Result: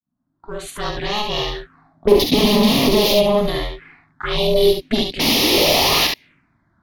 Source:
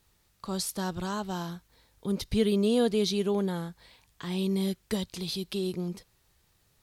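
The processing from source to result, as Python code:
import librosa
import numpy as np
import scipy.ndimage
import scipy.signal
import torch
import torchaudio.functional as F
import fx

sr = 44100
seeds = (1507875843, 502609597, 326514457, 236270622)

p1 = fx.fade_in_head(x, sr, length_s=1.22)
p2 = fx.tilt_shelf(p1, sr, db=-6.5, hz=780.0)
p3 = p2 * np.sin(2.0 * np.pi * 210.0 * np.arange(len(p2)) / sr)
p4 = fx.hpss(p3, sr, part='percussive', gain_db=-4)
p5 = fx.leveller(p4, sr, passes=3, at=(2.07, 3.14))
p6 = fx.spec_paint(p5, sr, seeds[0], shape='noise', start_s=5.19, length_s=0.88, low_hz=240.0, high_hz=6000.0, level_db=-25.0)
p7 = fx.fold_sine(p6, sr, drive_db=16, ceiling_db=-11.5)
p8 = p6 + (p7 * 10.0 ** (-5.0 / 20.0))
p9 = fx.env_lowpass(p8, sr, base_hz=600.0, full_db=-17.0)
p10 = fx.env_phaser(p9, sr, low_hz=440.0, high_hz=1500.0, full_db=-22.0)
p11 = p10 + fx.room_early_taps(p10, sr, ms=(44, 70), db=(-8.5, -5.0), dry=0)
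p12 = fx.bell_lfo(p11, sr, hz=0.39, low_hz=210.0, high_hz=2400.0, db=12)
y = p12 * 10.0 ** (2.0 / 20.0)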